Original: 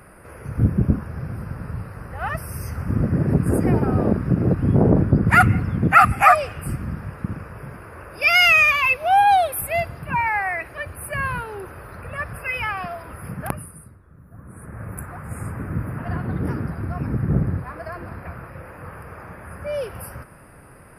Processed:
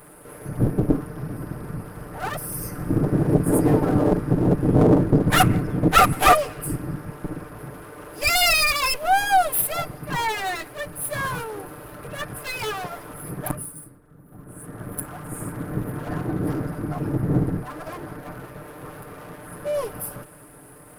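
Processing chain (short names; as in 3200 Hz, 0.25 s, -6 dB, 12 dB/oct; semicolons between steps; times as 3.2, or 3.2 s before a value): minimum comb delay 6.7 ms; EQ curve 160 Hz 0 dB, 310 Hz +6 dB, 2500 Hz -3 dB, 5900 Hz +2 dB, 10000 Hz +9 dB; gain -1 dB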